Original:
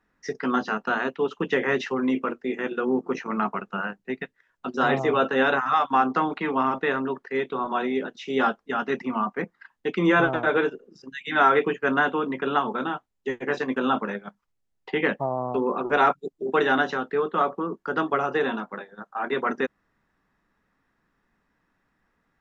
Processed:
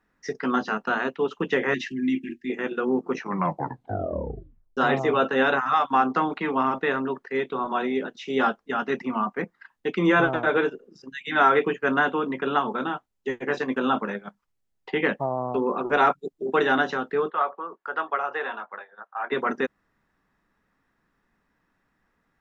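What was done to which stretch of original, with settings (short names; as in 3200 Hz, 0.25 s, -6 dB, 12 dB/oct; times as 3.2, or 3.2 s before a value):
1.74–2.5 brick-wall FIR band-stop 370–1600 Hz
3.17 tape stop 1.60 s
17.3–19.32 three-band isolator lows -23 dB, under 540 Hz, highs -13 dB, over 2900 Hz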